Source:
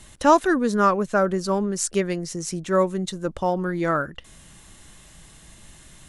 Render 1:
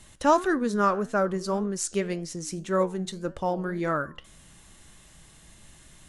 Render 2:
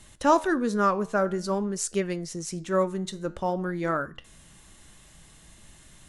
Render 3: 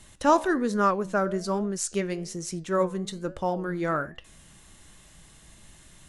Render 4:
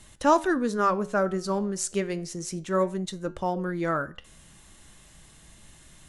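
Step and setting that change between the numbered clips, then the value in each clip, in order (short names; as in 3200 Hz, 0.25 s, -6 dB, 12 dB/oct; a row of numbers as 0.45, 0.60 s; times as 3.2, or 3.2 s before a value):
flange, rate: 1.8, 0.51, 1.2, 0.3 Hz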